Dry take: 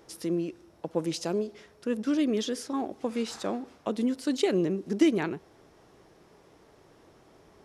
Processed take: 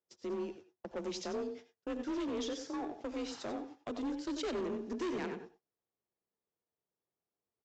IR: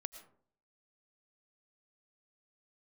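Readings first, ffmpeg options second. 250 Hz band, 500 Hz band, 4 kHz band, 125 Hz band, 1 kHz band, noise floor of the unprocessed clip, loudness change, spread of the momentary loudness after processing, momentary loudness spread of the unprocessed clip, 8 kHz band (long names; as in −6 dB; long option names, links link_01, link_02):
−11.0 dB, −8.5 dB, −7.5 dB, −15.5 dB, −6.0 dB, −59 dBFS, −10.0 dB, 7 LU, 10 LU, −9.0 dB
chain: -filter_complex "[0:a]afreqshift=33,asplit=2[link_01][link_02];[link_02]adelay=93.29,volume=-10dB,highshelf=frequency=4000:gain=-2.1[link_03];[link_01][link_03]amix=inputs=2:normalize=0,aresample=16000,asoftclip=type=hard:threshold=-26.5dB,aresample=44100,agate=range=-32dB:threshold=-44dB:ratio=16:detection=peak[link_04];[1:a]atrim=start_sample=2205,atrim=end_sample=6174,asetrate=57330,aresample=44100[link_05];[link_04][link_05]afir=irnorm=-1:irlink=0,volume=-1.5dB"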